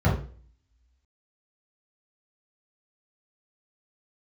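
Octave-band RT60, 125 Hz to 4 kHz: 0.50 s, 0.45 s, 0.45 s, 0.40 s, 0.40 s, 0.45 s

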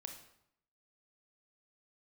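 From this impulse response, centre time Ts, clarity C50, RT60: 21 ms, 7.0 dB, 0.75 s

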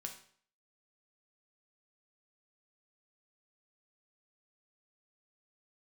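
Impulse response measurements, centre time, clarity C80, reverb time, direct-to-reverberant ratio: 16 ms, 13.0 dB, 0.55 s, 2.5 dB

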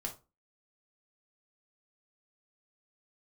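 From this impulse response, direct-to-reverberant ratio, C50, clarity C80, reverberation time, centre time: 0.5 dB, 12.0 dB, 19.0 dB, 0.30 s, 13 ms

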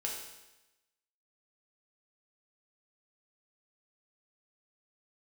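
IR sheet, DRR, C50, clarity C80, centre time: -2.0 dB, 3.0 dB, 5.5 dB, 47 ms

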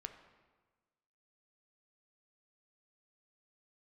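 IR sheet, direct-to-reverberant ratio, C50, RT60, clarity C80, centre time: 6.5 dB, 9.5 dB, 1.4 s, 11.0 dB, 17 ms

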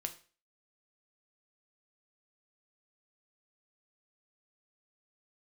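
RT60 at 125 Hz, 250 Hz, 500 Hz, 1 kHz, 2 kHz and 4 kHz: 0.35 s, 0.40 s, 0.40 s, 0.40 s, 0.40 s, 0.40 s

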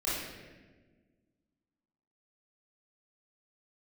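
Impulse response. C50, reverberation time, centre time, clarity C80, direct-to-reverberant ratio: -1.0 dB, 1.4 s, 90 ms, 2.0 dB, -10.0 dB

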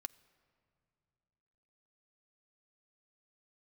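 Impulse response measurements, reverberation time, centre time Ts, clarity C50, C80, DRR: no single decay rate, 3 ms, 21.0 dB, 21.5 dB, 11.0 dB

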